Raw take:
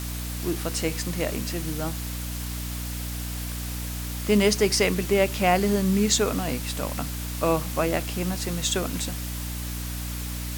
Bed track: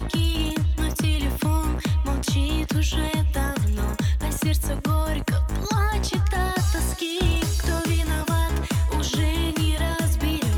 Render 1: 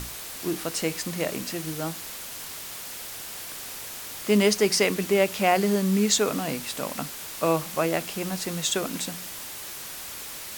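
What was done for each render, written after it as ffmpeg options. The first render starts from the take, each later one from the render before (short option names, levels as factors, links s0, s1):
-af "bandreject=f=60:t=h:w=6,bandreject=f=120:t=h:w=6,bandreject=f=180:t=h:w=6,bandreject=f=240:t=h:w=6,bandreject=f=300:t=h:w=6"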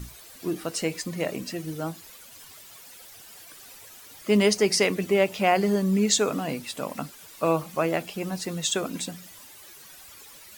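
-af "afftdn=nr=13:nf=-38"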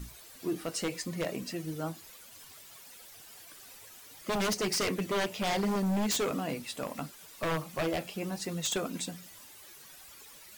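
-af "flanger=delay=4.1:depth=6.6:regen=-69:speed=0.68:shape=triangular,aeval=exprs='0.0596*(abs(mod(val(0)/0.0596+3,4)-2)-1)':c=same"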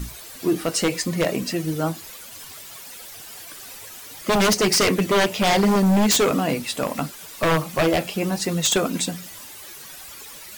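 -af "volume=3.98"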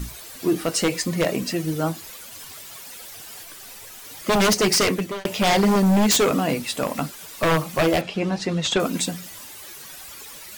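-filter_complex "[0:a]asettb=1/sr,asplit=3[s0][s1][s2];[s0]atrim=end=3.434[s3];[s1]atrim=start=3.43:end=4.05,asetpts=PTS-STARTPTS,afade=t=in:d=0.004:c=qsin,afade=t=out:st=0.616:d=0.004:c=qsin,aeval=exprs='clip(val(0),-1,0.00891)':c=same[s4];[s2]atrim=start=4.046[s5];[s3][s4]acrossfade=d=0.004:c1=hsin:c2=qsin[s6];[s6][s5]acrossfade=d=0.004:c1=qsin:c2=hsin,asettb=1/sr,asplit=3[s7][s8][s9];[s7]atrim=end=8.014[s10];[s8]atrim=start=8.01:end=8.8,asetpts=PTS-STARTPTS,afade=t=in:d=0.004:c=qsin,afade=t=out:st=0.786:d=0.004:c=qsin,lowpass=4400[s11];[s9]atrim=start=8.796[s12];[s10][s11]acrossfade=d=0.004:c1=hsin:c2=qsin[s13];[s13][s12]acrossfade=d=0.004:c1=qsin:c2=hsin,asplit=2[s14][s15];[s14]atrim=end=5.25,asetpts=PTS-STARTPTS,afade=t=out:st=4.66:d=0.59:c=qsin[s16];[s15]atrim=start=5.25,asetpts=PTS-STARTPTS,afade=t=in:d=0.004:c=hsin[s17];[s16][s17]concat=n=2:v=0:a=1"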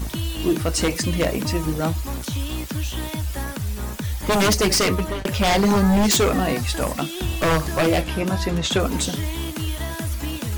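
-filter_complex "[1:a]volume=0.596[s0];[0:a][s0]amix=inputs=2:normalize=0"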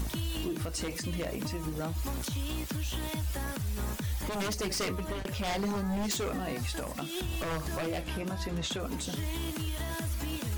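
-af "acompressor=threshold=0.0631:ratio=6,alimiter=level_in=1.12:limit=0.0631:level=0:latency=1:release=343,volume=0.891"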